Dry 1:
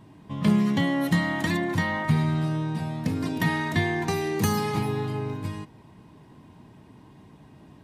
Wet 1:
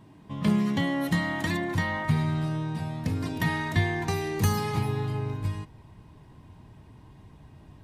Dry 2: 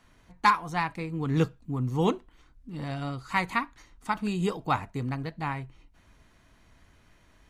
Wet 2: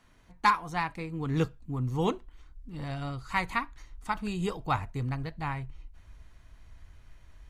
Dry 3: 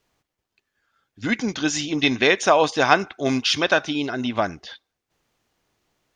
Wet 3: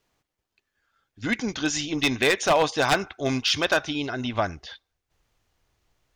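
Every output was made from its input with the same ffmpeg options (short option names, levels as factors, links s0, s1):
-af "asubboost=boost=5:cutoff=93,aeval=exprs='0.316*(abs(mod(val(0)/0.316+3,4)-2)-1)':c=same,volume=0.794"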